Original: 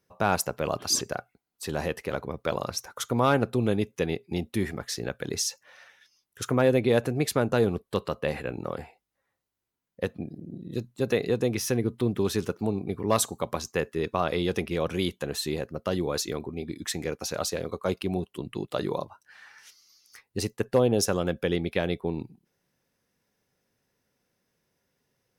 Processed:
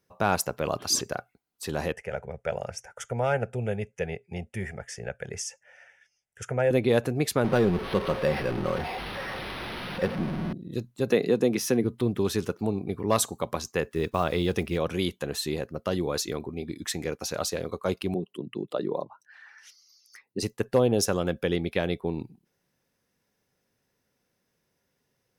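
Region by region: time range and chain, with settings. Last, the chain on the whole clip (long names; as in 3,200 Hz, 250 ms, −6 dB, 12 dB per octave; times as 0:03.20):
0:01.92–0:06.71: low-pass filter 8,900 Hz 24 dB per octave + phaser with its sweep stopped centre 1,100 Hz, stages 6
0:07.44–0:10.53: converter with a step at zero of −27.5 dBFS + comb filter 5.4 ms, depth 32% + linearly interpolated sample-rate reduction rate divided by 6×
0:11.10–0:11.84: high-pass filter 160 Hz 24 dB per octave + low-shelf EQ 440 Hz +5.5 dB
0:13.84–0:14.78: one scale factor per block 7 bits + low-shelf EQ 110 Hz +6.5 dB
0:18.14–0:20.43: spectral envelope exaggerated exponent 1.5 + high-pass filter 140 Hz 24 dB per octave
whole clip: no processing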